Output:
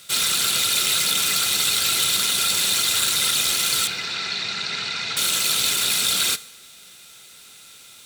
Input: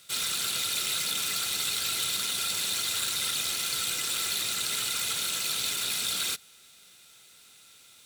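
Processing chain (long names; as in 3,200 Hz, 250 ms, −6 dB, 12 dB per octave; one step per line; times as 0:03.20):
0:03.87–0:05.17: loudspeaker in its box 120–4,600 Hz, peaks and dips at 310 Hz −9 dB, 540 Hz −7 dB, 1,200 Hz −5 dB, 3,200 Hz −9 dB
coupled-rooms reverb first 0.73 s, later 3.4 s, from −26 dB, DRR 15.5 dB
level +9 dB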